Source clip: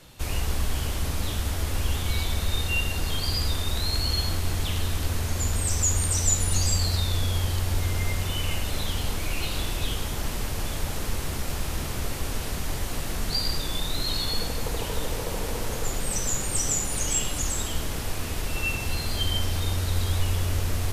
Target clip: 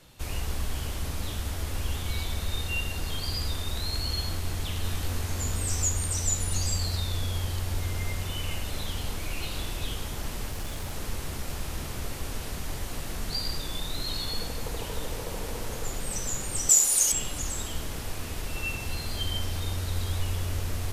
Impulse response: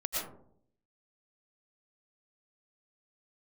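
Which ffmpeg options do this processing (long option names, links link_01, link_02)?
-filter_complex "[0:a]asettb=1/sr,asplit=3[link_01][link_02][link_03];[link_01]atrim=end=4.824[link_04];[link_02]atrim=start=4.82:end=5.89,asetpts=PTS-STARTPTS,afade=type=in:duration=0.004:curve=qsin,afade=type=out:start_time=1.066:duration=0.004:curve=qsin,asplit=2[link_05][link_06];[link_06]adelay=20,volume=-4dB[link_07];[link_05][link_07]amix=inputs=2:normalize=0,atrim=end_sample=47187[link_08];[link_03]atrim=start=5.886[link_09];[link_04][link_08]acrossfade=duration=0.004:curve1=hsin:curve2=qsin[link_10];[link_10][link_09]acrossfade=duration=0.004:curve1=qsin:curve2=hsin,asplit=3[link_11][link_12][link_13];[link_11]afade=type=out:start_time=10.51:duration=0.02[link_14];[link_12]aeval=exprs='0.0708*(abs(mod(val(0)/0.0708+3,4)-2)-1)':channel_layout=same,afade=type=in:start_time=10.51:duration=0.02,afade=type=out:start_time=10.95:duration=0.02[link_15];[link_13]afade=type=in:start_time=10.95:duration=0.02[link_16];[link_14][link_15][link_16]amix=inputs=3:normalize=0,asettb=1/sr,asplit=3[link_17][link_18][link_19];[link_17]atrim=end=16.694[link_20];[link_18]atrim=start=16.69:end=17.12,asetpts=PTS-STARTPTS,afade=type=in:duration=0.004:curve=qsin,afade=type=out:start_time=0.426:duration=0.004:curve=qsin,bass=frequency=250:gain=-15,treble=frequency=4000:gain=14[link_21];[link_19]atrim=start=17.116[link_22];[link_20][link_21]acrossfade=duration=0.004:curve1=hsin:curve2=qsin[link_23];[link_23][link_22]acrossfade=duration=0.004:curve1=qsin:curve2=hsin,volume=-4.5dB"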